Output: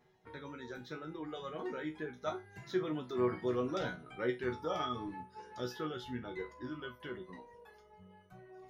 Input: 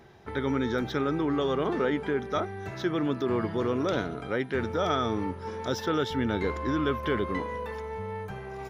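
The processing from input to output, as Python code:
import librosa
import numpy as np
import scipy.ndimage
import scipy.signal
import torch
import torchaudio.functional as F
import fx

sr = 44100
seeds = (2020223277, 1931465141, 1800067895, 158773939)

y = fx.doppler_pass(x, sr, speed_mps=15, closest_m=22.0, pass_at_s=3.78)
y = fx.dereverb_blind(y, sr, rt60_s=1.4)
y = fx.resonator_bank(y, sr, root=47, chord='major', decay_s=0.23)
y = y * librosa.db_to_amplitude(6.5)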